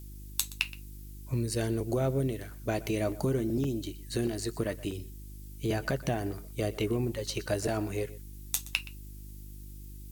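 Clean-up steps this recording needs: de-hum 50.4 Hz, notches 7; interpolate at 3.12/3.64/4.27/4.91/6.32 s, 3.6 ms; noise print and reduce 30 dB; inverse comb 122 ms -18.5 dB

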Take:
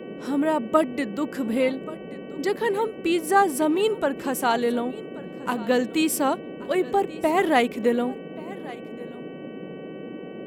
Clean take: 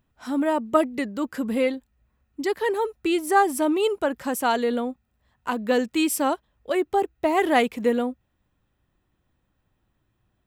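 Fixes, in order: de-hum 378.4 Hz, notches 8; noise print and reduce 30 dB; inverse comb 1131 ms -19 dB

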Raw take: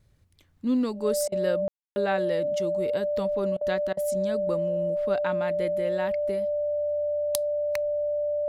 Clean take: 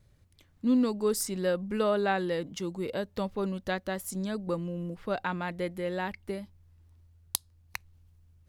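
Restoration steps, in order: band-stop 590 Hz, Q 30; room tone fill 1.68–1.96 s; interpolate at 1.28/3.57/3.93 s, 40 ms

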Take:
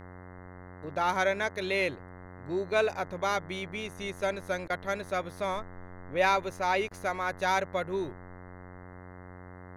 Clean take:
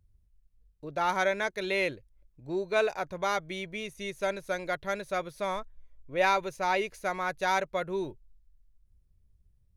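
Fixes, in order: de-hum 90.8 Hz, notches 23; interpolate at 4.68/6.89 s, 18 ms

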